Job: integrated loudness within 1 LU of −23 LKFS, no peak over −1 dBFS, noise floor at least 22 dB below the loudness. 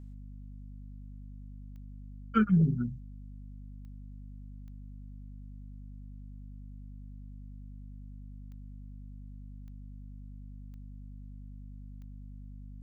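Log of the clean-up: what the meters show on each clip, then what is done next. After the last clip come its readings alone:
number of clicks 7; mains hum 50 Hz; hum harmonics up to 250 Hz; level of the hum −43 dBFS; integrated loudness −30.0 LKFS; sample peak −13.5 dBFS; target loudness −23.0 LKFS
→ click removal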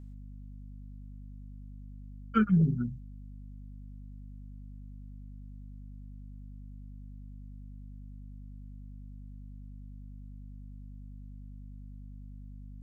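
number of clicks 0; mains hum 50 Hz; hum harmonics up to 250 Hz; level of the hum −43 dBFS
→ hum removal 50 Hz, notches 5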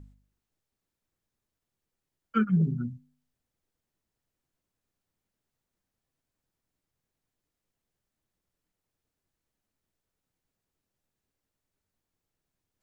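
mains hum none found; integrated loudness −28.0 LKFS; sample peak −13.5 dBFS; target loudness −23.0 LKFS
→ level +5 dB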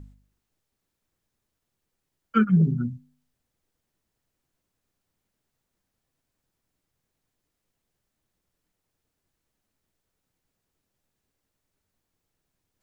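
integrated loudness −23.0 LKFS; sample peak −8.5 dBFS; background noise floor −82 dBFS

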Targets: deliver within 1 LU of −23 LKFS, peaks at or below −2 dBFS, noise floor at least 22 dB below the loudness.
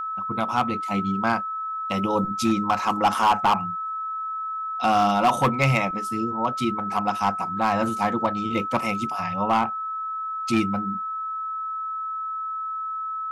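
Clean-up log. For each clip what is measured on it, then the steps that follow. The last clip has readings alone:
share of clipped samples 0.6%; peaks flattened at −13.5 dBFS; interfering tone 1,300 Hz; level of the tone −27 dBFS; integrated loudness −24.5 LKFS; sample peak −13.5 dBFS; target loudness −23.0 LKFS
→ clipped peaks rebuilt −13.5 dBFS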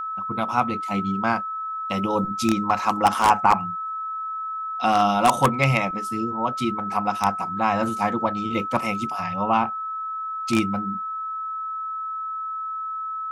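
share of clipped samples 0.0%; interfering tone 1,300 Hz; level of the tone −27 dBFS
→ notch filter 1,300 Hz, Q 30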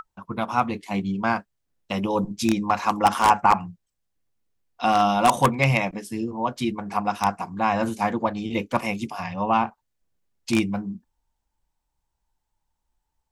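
interfering tone none found; integrated loudness −24.0 LKFS; sample peak −4.0 dBFS; target loudness −23.0 LKFS
→ level +1 dB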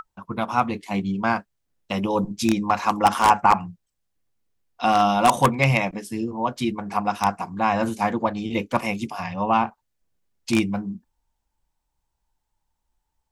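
integrated loudness −23.0 LKFS; sample peak −3.0 dBFS; background noise floor −78 dBFS

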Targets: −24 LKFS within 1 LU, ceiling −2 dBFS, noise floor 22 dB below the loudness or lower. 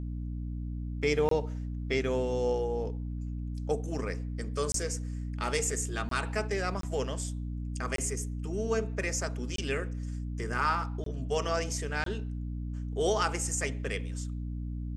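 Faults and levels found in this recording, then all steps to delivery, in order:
number of dropouts 8; longest dropout 23 ms; mains hum 60 Hz; hum harmonics up to 300 Hz; level of the hum −33 dBFS; integrated loudness −32.5 LKFS; sample peak −12.5 dBFS; target loudness −24.0 LKFS
→ repair the gap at 0:01.29/0:04.72/0:06.09/0:06.81/0:07.96/0:09.56/0:11.04/0:12.04, 23 ms
hum removal 60 Hz, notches 5
level +8.5 dB

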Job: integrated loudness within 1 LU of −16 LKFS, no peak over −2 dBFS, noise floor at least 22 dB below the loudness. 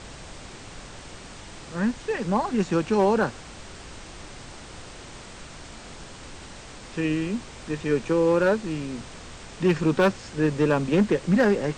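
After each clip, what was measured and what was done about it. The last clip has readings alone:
share of clipped samples 0.5%; peaks flattened at −13.5 dBFS; background noise floor −43 dBFS; target noise floor −46 dBFS; integrated loudness −24.0 LKFS; sample peak −13.5 dBFS; target loudness −16.0 LKFS
→ clipped peaks rebuilt −13.5 dBFS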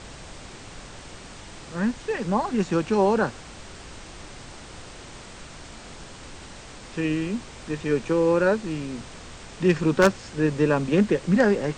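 share of clipped samples 0.0%; background noise floor −43 dBFS; target noise floor −46 dBFS
→ noise reduction from a noise print 6 dB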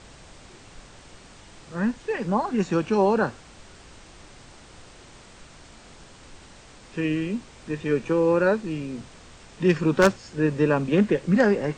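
background noise floor −49 dBFS; integrated loudness −23.5 LKFS; sample peak −4.5 dBFS; target loudness −16.0 LKFS
→ level +7.5 dB
brickwall limiter −2 dBFS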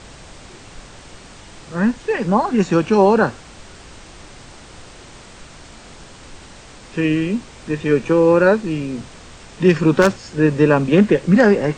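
integrated loudness −16.5 LKFS; sample peak −2.0 dBFS; background noise floor −41 dBFS

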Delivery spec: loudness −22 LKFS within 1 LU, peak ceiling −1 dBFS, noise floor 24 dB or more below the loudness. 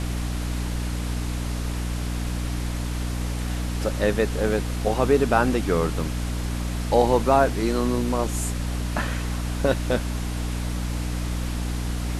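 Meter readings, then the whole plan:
mains hum 60 Hz; hum harmonics up to 300 Hz; level of the hum −25 dBFS; background noise floor −28 dBFS; target noise floor −49 dBFS; integrated loudness −25.0 LKFS; sample peak −4.5 dBFS; target loudness −22.0 LKFS
→ mains-hum notches 60/120/180/240/300 Hz
noise reduction from a noise print 21 dB
level +3 dB

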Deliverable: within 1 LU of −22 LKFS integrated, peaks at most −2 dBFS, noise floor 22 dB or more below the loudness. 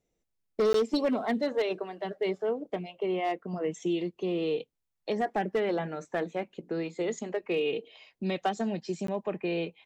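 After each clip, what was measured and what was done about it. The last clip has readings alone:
share of clipped samples 0.7%; peaks flattened at −21.0 dBFS; number of dropouts 2; longest dropout 13 ms; integrated loudness −31.5 LKFS; sample peak −21.0 dBFS; target loudness −22.0 LKFS
→ clipped peaks rebuilt −21 dBFS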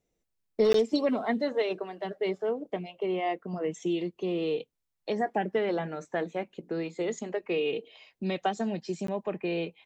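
share of clipped samples 0.0%; number of dropouts 2; longest dropout 13 ms
→ repair the gap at 0:00.73/0:09.07, 13 ms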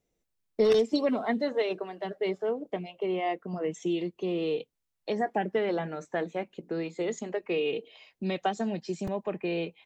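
number of dropouts 0; integrated loudness −31.0 LKFS; sample peak −12.0 dBFS; target loudness −22.0 LKFS
→ level +9 dB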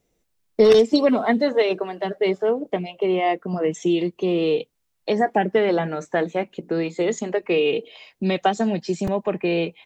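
integrated loudness −22.0 LKFS; sample peak −3.0 dBFS; background noise floor −72 dBFS

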